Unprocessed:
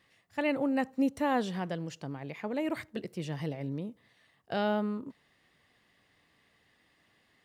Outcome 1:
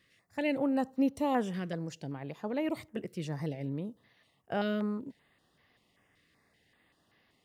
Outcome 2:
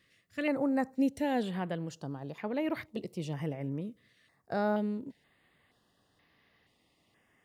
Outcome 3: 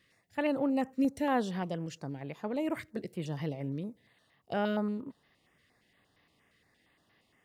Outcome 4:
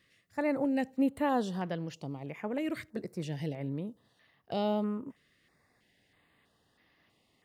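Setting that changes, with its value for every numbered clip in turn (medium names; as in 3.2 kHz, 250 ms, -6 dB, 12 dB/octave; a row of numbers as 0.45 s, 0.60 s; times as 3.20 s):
step-sequenced notch, rate: 5.2 Hz, 2.1 Hz, 8.6 Hz, 3.1 Hz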